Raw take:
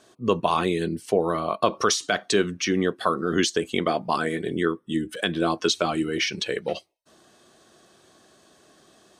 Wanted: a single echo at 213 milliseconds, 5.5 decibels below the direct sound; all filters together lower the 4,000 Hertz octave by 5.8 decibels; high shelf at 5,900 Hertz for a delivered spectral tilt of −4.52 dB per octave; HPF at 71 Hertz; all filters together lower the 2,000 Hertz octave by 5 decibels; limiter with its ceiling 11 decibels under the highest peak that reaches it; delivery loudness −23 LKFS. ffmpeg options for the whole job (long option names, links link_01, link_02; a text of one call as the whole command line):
ffmpeg -i in.wav -af "highpass=71,equalizer=frequency=2000:width_type=o:gain=-5.5,equalizer=frequency=4000:width_type=o:gain=-4.5,highshelf=frequency=5900:gain=-3.5,alimiter=limit=-18.5dB:level=0:latency=1,aecho=1:1:213:0.531,volume=6dB" out.wav